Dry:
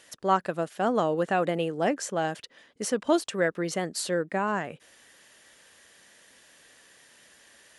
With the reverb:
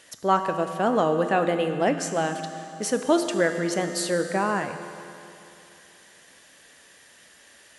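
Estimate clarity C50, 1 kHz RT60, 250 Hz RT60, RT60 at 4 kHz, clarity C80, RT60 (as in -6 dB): 7.5 dB, 2.9 s, 2.9 s, 2.8 s, 8.0 dB, 2.9 s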